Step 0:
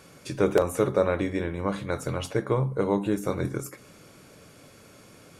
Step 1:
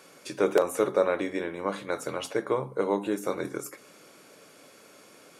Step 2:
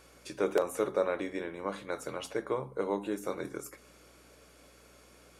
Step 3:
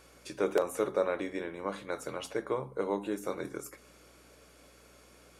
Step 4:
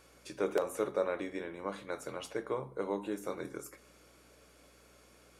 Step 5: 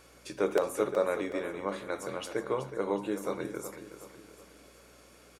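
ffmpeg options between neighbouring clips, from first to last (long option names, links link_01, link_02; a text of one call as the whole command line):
ffmpeg -i in.wav -af "highpass=300" out.wav
ffmpeg -i in.wav -af "aeval=exprs='val(0)+0.00126*(sin(2*PI*60*n/s)+sin(2*PI*2*60*n/s)/2+sin(2*PI*3*60*n/s)/3+sin(2*PI*4*60*n/s)/4+sin(2*PI*5*60*n/s)/5)':channel_layout=same,volume=-5.5dB" out.wav
ffmpeg -i in.wav -af anull out.wav
ffmpeg -i in.wav -af "flanger=delay=8.9:depth=1.4:regen=-87:speed=0.96:shape=triangular,volume=1.5dB" out.wav
ffmpeg -i in.wav -af "aecho=1:1:371|742|1113|1484:0.282|0.121|0.0521|0.0224,volume=4dB" out.wav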